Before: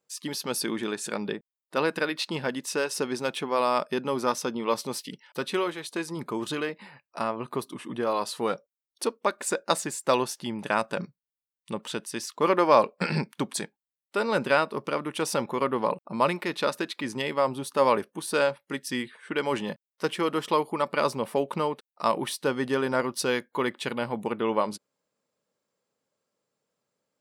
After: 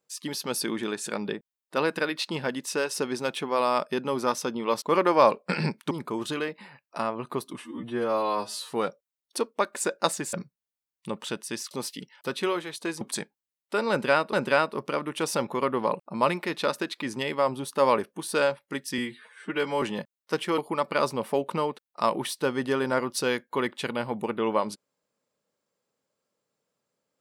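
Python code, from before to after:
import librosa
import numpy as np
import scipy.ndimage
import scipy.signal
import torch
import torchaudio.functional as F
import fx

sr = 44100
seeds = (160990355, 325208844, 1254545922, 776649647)

y = fx.edit(x, sr, fx.swap(start_s=4.82, length_s=1.3, other_s=12.34, other_length_s=1.09),
    fx.stretch_span(start_s=7.83, length_s=0.55, factor=2.0),
    fx.cut(start_s=9.99, length_s=0.97),
    fx.repeat(start_s=14.32, length_s=0.43, count=2),
    fx.stretch_span(start_s=18.97, length_s=0.56, factor=1.5),
    fx.cut(start_s=20.29, length_s=0.31), tone=tone)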